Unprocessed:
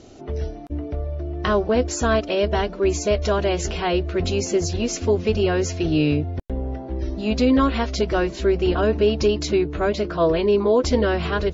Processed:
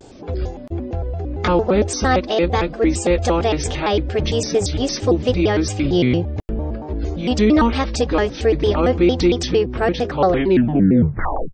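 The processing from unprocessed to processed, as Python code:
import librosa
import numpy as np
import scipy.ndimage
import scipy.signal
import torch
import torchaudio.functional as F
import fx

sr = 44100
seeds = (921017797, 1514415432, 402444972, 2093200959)

y = fx.tape_stop_end(x, sr, length_s=1.28)
y = fx.vibrato_shape(y, sr, shape='square', rate_hz=4.4, depth_cents=250.0)
y = y * librosa.db_to_amplitude(3.0)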